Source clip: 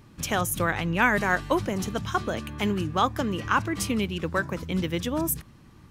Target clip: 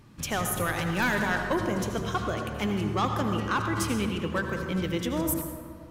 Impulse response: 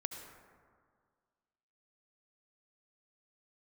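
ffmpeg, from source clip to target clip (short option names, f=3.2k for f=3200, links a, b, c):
-filter_complex "[0:a]asettb=1/sr,asplit=3[a][b][c];[a]atrim=end=0.734[d];[b]atrim=start=0.73:end=1.15,asetpts=PTS-STARTPTS,afade=t=in:d=0.004:c=qsin,afade=t=out:st=0.416:d=0.004:c=qsin,bass=f=250:g=2,treble=f=4k:g=10[e];[c]atrim=start=1.146[f];[d][e]acrossfade=d=0.004:c1=hsin:c2=qsin[g];[g][f]acrossfade=d=0.004:c1=qsin:c2=hsin,asoftclip=type=tanh:threshold=-18dB[h];[1:a]atrim=start_sample=2205,asetrate=40572,aresample=44100[i];[h][i]afir=irnorm=-1:irlink=0"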